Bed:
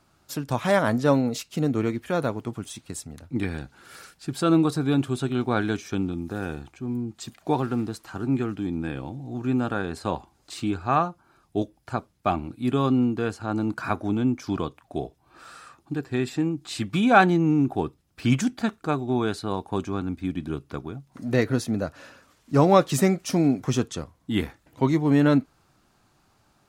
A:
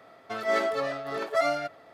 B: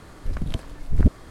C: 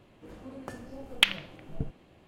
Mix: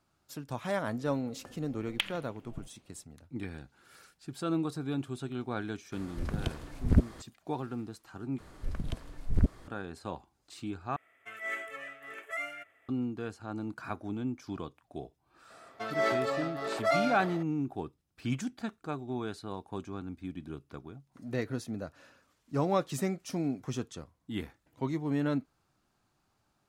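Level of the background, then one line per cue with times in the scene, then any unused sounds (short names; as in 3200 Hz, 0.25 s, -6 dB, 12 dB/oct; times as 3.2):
bed -11.5 dB
0.77 add C -10 dB
5.92 add B -3 dB + HPF 59 Hz 6 dB/oct
8.38 replace with B -8 dB
10.96 replace with A -14 dB + EQ curve 100 Hz 0 dB, 170 Hz -13 dB, 280 Hz -4 dB, 920 Hz -7 dB, 2100 Hz +12 dB, 3000 Hz +8 dB, 4400 Hz -15 dB, 7400 Hz +8 dB
15.5 add A -3.5 dB + sustainer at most 45 dB/s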